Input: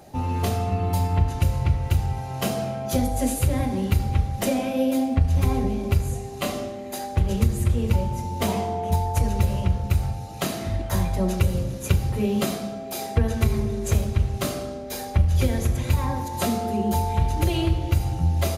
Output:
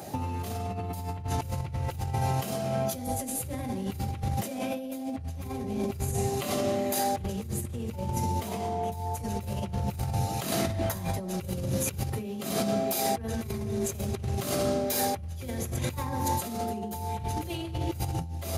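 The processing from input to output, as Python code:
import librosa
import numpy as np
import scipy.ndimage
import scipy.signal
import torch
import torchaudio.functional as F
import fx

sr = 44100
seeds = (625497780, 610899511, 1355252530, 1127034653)

y = scipy.signal.sosfilt(scipy.signal.butter(4, 77.0, 'highpass', fs=sr, output='sos'), x)
y = fx.high_shelf(y, sr, hz=7800.0, db=7.0)
y = fx.over_compress(y, sr, threshold_db=-32.0, ratio=-1.0)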